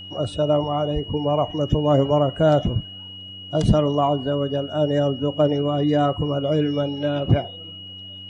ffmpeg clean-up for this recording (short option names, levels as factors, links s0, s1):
-af "bandreject=f=95.1:t=h:w=4,bandreject=f=190.2:t=h:w=4,bandreject=f=285.3:t=h:w=4,bandreject=f=2900:w=30"